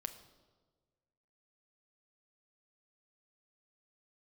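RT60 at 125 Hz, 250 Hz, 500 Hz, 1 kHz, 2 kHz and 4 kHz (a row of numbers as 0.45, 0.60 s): 1.8, 1.6, 1.6, 1.3, 0.95, 1.0 s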